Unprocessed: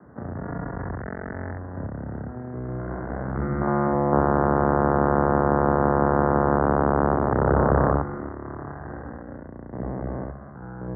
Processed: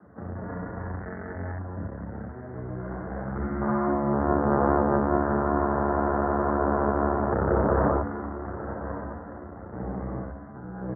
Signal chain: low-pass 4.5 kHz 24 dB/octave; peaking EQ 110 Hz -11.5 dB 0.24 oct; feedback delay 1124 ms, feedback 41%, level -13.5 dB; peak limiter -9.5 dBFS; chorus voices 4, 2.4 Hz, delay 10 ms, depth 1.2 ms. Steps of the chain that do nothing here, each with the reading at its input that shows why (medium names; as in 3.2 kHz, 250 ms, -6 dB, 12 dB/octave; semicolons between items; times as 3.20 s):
low-pass 4.5 kHz: input has nothing above 1.8 kHz